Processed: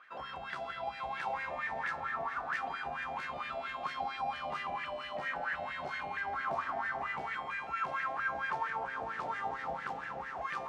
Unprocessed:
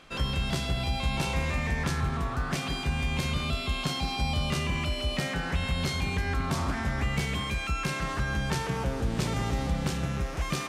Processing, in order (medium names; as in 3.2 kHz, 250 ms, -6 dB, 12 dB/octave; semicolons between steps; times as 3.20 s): echo that smears into a reverb 504 ms, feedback 66%, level -8.5 dB; wah-wah 4.4 Hz 680–1800 Hz, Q 6.9; trim +7 dB